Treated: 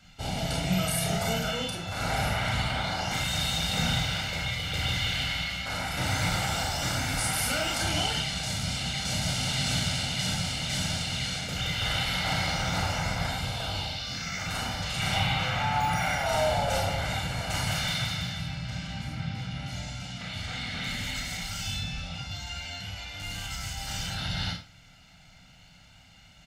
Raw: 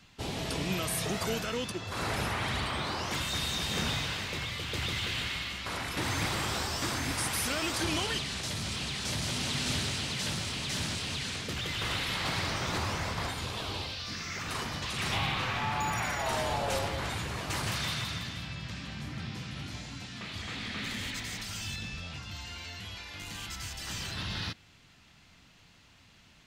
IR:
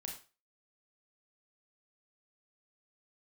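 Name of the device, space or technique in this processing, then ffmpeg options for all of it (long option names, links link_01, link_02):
microphone above a desk: -filter_complex "[0:a]asettb=1/sr,asplit=3[link_01][link_02][link_03];[link_01]atrim=end=19.154[link_04];[link_02]atrim=start=19.15:end=19.66,asetpts=PTS-STARTPTS,afade=type=in:duration=0.004:curve=qsin,afade=type=out:start_time=0.506:duration=0.004:curve=qsin,highshelf=frequency=5900:gain=-8.5[link_05];[link_03]atrim=start=19.656[link_06];[link_04][link_05]acrossfade=duration=0.004:curve1=hsin:curve2=qsin[link_07];[link_07][link_06]acrossfade=duration=0.004:curve1=qsin:curve2=hsin,aecho=1:1:1.4:0.69[link_08];[1:a]atrim=start_sample=2205[link_09];[link_08][link_09]afir=irnorm=-1:irlink=0,volume=4dB"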